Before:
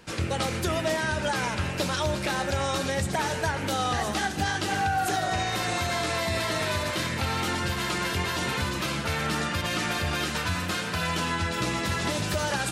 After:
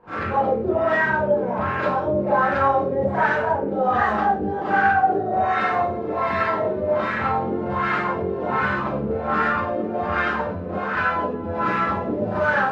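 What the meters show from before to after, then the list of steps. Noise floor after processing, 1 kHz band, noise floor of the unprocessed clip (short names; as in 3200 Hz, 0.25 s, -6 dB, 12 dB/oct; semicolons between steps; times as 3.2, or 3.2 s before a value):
-28 dBFS, +9.0 dB, -32 dBFS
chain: low shelf 160 Hz -6.5 dB; LFO low-pass sine 1.3 Hz 430–1600 Hz; Schroeder reverb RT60 0.33 s, combs from 29 ms, DRR -9.5 dB; gain -4 dB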